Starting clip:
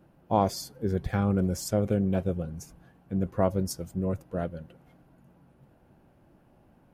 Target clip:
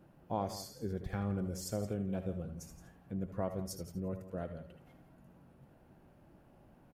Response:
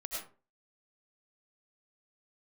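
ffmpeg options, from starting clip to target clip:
-filter_complex "[1:a]atrim=start_sample=2205,atrim=end_sample=3528[link_01];[0:a][link_01]afir=irnorm=-1:irlink=0,acompressor=threshold=-52dB:ratio=1.5,asettb=1/sr,asplit=3[link_02][link_03][link_04];[link_02]atrim=end=3.754[link_05];[link_03]atrim=start=3.75:end=4.19,asetpts=PTS-STARTPTS,afade=type=in:duration=0.004:curve=qsin,afade=type=out:start_time=0.436:duration=0.004:curve=qsin,equalizer=frequency=7600:width_type=o:width=0.28:gain=-12[link_06];[link_04]atrim=start=4.186[link_07];[link_05][link_06]acrossfade=duration=0.004:curve1=hsin:curve2=qsin[link_08];[link_08][link_07]acrossfade=duration=0.004:curve1=qsin:curve2=hsin,aecho=1:1:170:0.2,volume=2.5dB"

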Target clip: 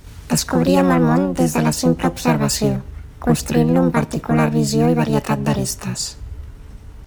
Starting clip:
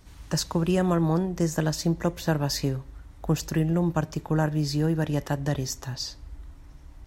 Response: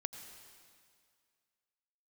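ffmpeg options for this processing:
-filter_complex "[0:a]acontrast=83,asplit=2[link_01][link_02];[link_02]asetrate=66075,aresample=44100,atempo=0.66742,volume=0dB[link_03];[link_01][link_03]amix=inputs=2:normalize=0,volume=-1dB"

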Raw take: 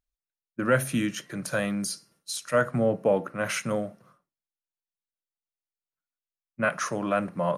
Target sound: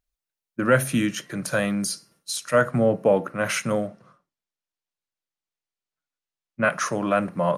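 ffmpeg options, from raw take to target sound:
ffmpeg -i in.wav -filter_complex "[0:a]asettb=1/sr,asplit=3[link_01][link_02][link_03];[link_01]atrim=end=3.874[link_04];[link_02]atrim=start=3.87:end=6.65,asetpts=PTS-STARTPTS,afade=type=in:duration=0.004:curve=qsin,afade=type=out:start_time=2.776:duration=0.004:curve=qsin,lowpass=7100[link_05];[link_03]atrim=start=6.646[link_06];[link_04][link_05]acrossfade=duration=0.004:curve1=hsin:curve2=qsin[link_07];[link_07][link_06]acrossfade=duration=0.004:curve1=qsin:curve2=hsin,volume=4dB" out.wav

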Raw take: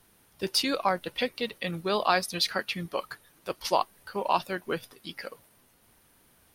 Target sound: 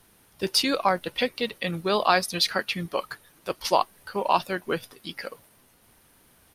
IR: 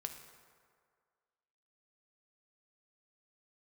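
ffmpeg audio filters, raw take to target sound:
-af "aresample=32000,aresample=44100,volume=3.5dB"

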